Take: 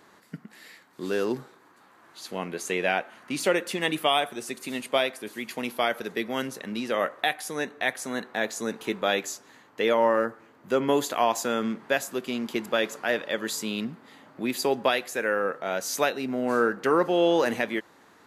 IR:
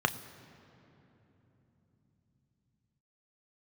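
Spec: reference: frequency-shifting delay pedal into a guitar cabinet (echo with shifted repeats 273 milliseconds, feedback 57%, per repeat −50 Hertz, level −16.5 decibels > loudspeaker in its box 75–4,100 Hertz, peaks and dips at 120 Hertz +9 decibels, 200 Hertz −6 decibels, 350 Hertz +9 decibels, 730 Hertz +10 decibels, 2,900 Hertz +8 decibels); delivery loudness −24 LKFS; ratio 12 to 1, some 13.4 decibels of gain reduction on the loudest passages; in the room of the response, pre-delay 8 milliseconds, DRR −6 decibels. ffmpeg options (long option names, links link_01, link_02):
-filter_complex "[0:a]acompressor=threshold=-31dB:ratio=12,asplit=2[link_01][link_02];[1:a]atrim=start_sample=2205,adelay=8[link_03];[link_02][link_03]afir=irnorm=-1:irlink=0,volume=-4dB[link_04];[link_01][link_04]amix=inputs=2:normalize=0,asplit=6[link_05][link_06][link_07][link_08][link_09][link_10];[link_06]adelay=273,afreqshift=-50,volume=-16.5dB[link_11];[link_07]adelay=546,afreqshift=-100,volume=-21.4dB[link_12];[link_08]adelay=819,afreqshift=-150,volume=-26.3dB[link_13];[link_09]adelay=1092,afreqshift=-200,volume=-31.1dB[link_14];[link_10]adelay=1365,afreqshift=-250,volume=-36dB[link_15];[link_05][link_11][link_12][link_13][link_14][link_15]amix=inputs=6:normalize=0,highpass=75,equalizer=frequency=120:width_type=q:width=4:gain=9,equalizer=frequency=200:width_type=q:width=4:gain=-6,equalizer=frequency=350:width_type=q:width=4:gain=9,equalizer=frequency=730:width_type=q:width=4:gain=10,equalizer=frequency=2900:width_type=q:width=4:gain=8,lowpass=frequency=4100:width=0.5412,lowpass=frequency=4100:width=1.3066,volume=3dB"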